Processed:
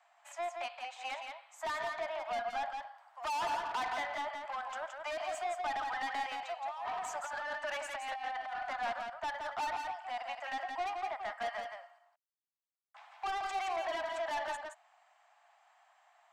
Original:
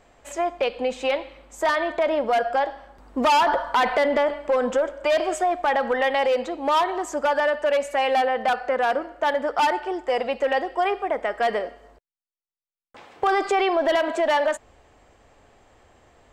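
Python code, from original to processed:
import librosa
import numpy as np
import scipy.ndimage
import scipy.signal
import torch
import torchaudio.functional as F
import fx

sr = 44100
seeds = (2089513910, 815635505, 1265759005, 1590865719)

y = scipy.signal.sosfilt(scipy.signal.butter(12, 670.0, 'highpass', fs=sr, output='sos'), x)
y = fx.high_shelf(y, sr, hz=3000.0, db=-7.5)
y = fx.over_compress(y, sr, threshold_db=-31.0, ratio=-1.0, at=(6.49, 8.73))
y = 10.0 ** (-26.0 / 20.0) * np.tanh(y / 10.0 ** (-26.0 / 20.0))
y = y + 10.0 ** (-5.0 / 20.0) * np.pad(y, (int(171 * sr / 1000.0), 0))[:len(y)]
y = F.gain(torch.from_numpy(y), -7.0).numpy()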